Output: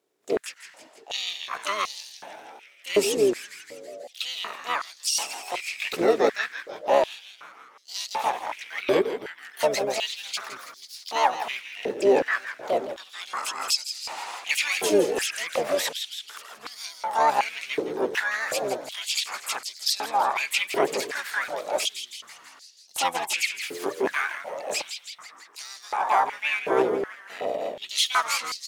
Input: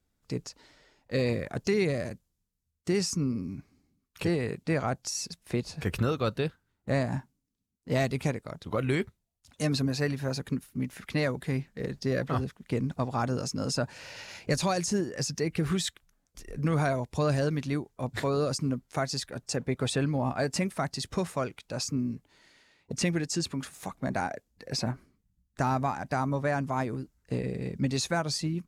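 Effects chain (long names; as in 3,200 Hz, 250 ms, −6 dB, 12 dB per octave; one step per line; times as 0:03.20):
pitch-shifted copies added −12 semitones 0 dB, +7 semitones −1 dB
echo with shifted repeats 164 ms, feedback 64%, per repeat −130 Hz, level −10 dB
high-pass on a step sequencer 2.7 Hz 420–4,700 Hz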